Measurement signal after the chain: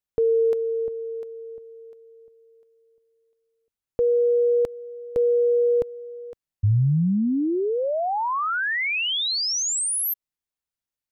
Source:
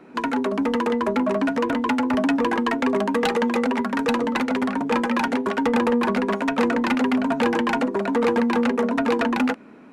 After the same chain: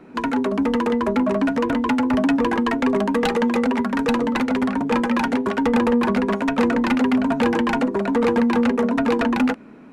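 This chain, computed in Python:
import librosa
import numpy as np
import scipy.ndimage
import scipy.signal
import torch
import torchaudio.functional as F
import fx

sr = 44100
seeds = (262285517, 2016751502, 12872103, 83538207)

y = fx.low_shelf(x, sr, hz=150.0, db=10.5)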